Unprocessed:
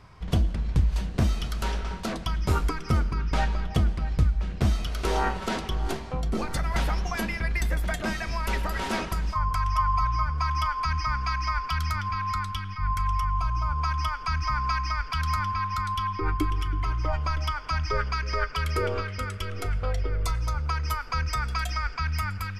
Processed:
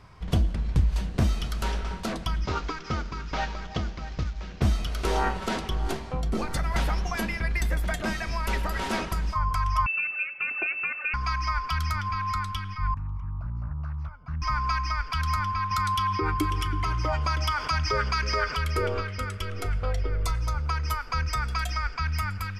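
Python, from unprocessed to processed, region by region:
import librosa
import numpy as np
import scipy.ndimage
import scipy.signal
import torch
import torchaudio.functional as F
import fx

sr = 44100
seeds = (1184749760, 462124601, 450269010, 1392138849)

y = fx.chain(x, sr, fx.cvsd(bps=32000),
    fx.low_shelf(hz=230.0, db=-9.0), at=(2.45, 4.62))
y = fx.chain(y, sr, fx.highpass(hz=1000.0, slope=24),
    fx.tilt_eq(slope=2.0),
    fx.freq_invert(carrier_hz=3700), at=(9.86, 11.14))
y = fx.chain(y, sr, fx.bandpass_q(hz=160.0, q=1.2),
    fx.comb(ms=1.4, depth=0.6),
    fx.doppler_dist(depth_ms=0.54), at=(12.94, 14.42))
y = fx.chain(y, sr, fx.highpass(hz=68.0, slope=12),
    fx.high_shelf(hz=4400.0, db=5.5),
    fx.env_flatten(amount_pct=50), at=(15.71, 18.55))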